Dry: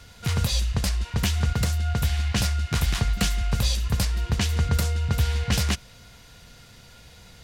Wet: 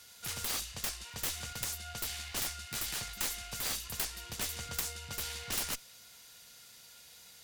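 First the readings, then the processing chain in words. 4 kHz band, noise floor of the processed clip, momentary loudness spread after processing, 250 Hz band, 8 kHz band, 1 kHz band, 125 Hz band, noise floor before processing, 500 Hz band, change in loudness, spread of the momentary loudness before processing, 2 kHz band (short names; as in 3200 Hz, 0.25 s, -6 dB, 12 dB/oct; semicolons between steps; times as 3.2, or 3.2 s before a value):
-8.0 dB, -56 dBFS, 18 LU, -20.5 dB, -3.5 dB, -10.5 dB, -25.5 dB, -49 dBFS, -13.0 dB, -11.0 dB, 2 LU, -9.0 dB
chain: RIAA curve recording; added harmonics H 3 -24 dB, 7 -13 dB, 8 -24 dB, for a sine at -2.5 dBFS; wavefolder -12 dBFS; gain -8 dB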